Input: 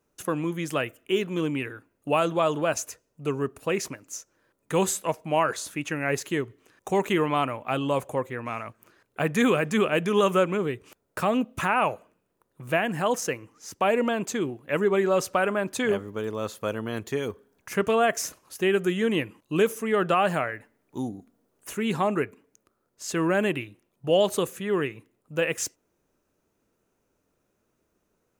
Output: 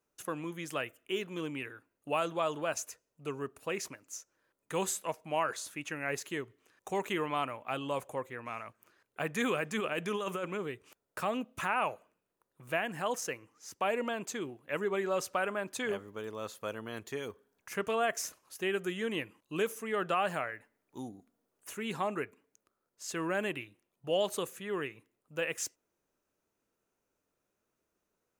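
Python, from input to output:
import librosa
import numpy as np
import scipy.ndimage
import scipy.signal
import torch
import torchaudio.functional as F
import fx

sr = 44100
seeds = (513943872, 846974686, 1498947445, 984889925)

y = fx.low_shelf(x, sr, hz=430.0, db=-7.0)
y = fx.over_compress(y, sr, threshold_db=-26.0, ratio=-1.0, at=(9.78, 10.48), fade=0.02)
y = y * 10.0 ** (-6.5 / 20.0)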